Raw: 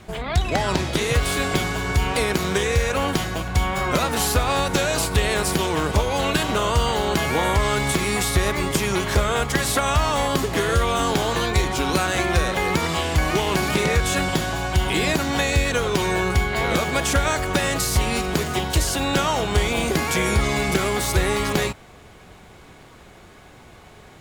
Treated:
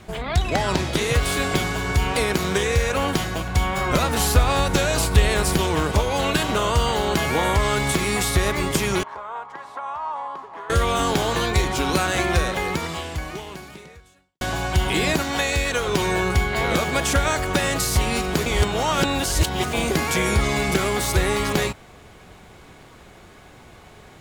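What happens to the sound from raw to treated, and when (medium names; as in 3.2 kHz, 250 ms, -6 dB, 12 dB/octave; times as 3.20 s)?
3.90–5.83 s: bass shelf 75 Hz +10.5 dB
9.03–10.70 s: band-pass filter 960 Hz, Q 5.3
12.34–14.41 s: fade out quadratic
15.22–15.88 s: peaking EQ 130 Hz -6.5 dB 2.7 oct
18.46–19.73 s: reverse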